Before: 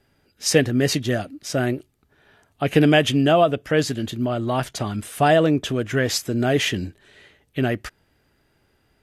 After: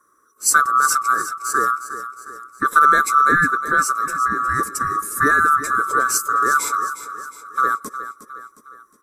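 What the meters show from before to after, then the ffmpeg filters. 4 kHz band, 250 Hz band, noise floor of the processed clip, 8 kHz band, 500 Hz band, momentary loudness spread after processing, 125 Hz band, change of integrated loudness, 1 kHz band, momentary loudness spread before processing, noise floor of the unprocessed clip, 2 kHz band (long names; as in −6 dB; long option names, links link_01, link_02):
−8.5 dB, −11.0 dB, −58 dBFS, +8.0 dB, −11.0 dB, 17 LU, −14.0 dB, +3.5 dB, +11.0 dB, 12 LU, −65 dBFS, +9.0 dB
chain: -af "afftfilt=real='real(if(lt(b,960),b+48*(1-2*mod(floor(b/48),2)),b),0)':imag='imag(if(lt(b,960),b+48*(1-2*mod(floor(b/48),2)),b),0)':win_size=2048:overlap=0.75,firequalizer=gain_entry='entry(120,0);entry(270,7);entry(440,6);entry(770,-21);entry(1100,6);entry(3000,-21);entry(4800,-4);entry(7700,10)':delay=0.05:min_phase=1,aecho=1:1:360|720|1080|1440|1800:0.251|0.123|0.0603|0.0296|0.0145"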